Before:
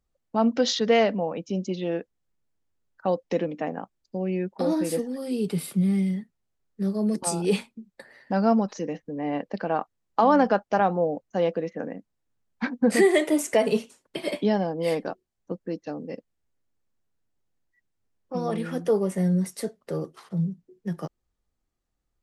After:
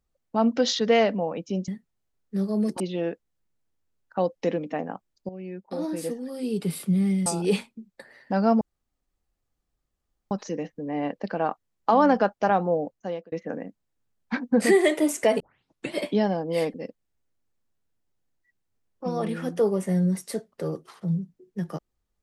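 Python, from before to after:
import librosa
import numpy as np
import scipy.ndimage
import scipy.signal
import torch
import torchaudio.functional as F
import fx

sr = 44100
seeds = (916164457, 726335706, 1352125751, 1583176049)

y = fx.edit(x, sr, fx.fade_in_from(start_s=4.17, length_s=1.45, floor_db=-12.5),
    fx.move(start_s=6.14, length_s=1.12, to_s=1.68),
    fx.insert_room_tone(at_s=8.61, length_s=1.7),
    fx.fade_out_span(start_s=11.13, length_s=0.49),
    fx.tape_start(start_s=13.7, length_s=0.54),
    fx.cut(start_s=15.04, length_s=0.99), tone=tone)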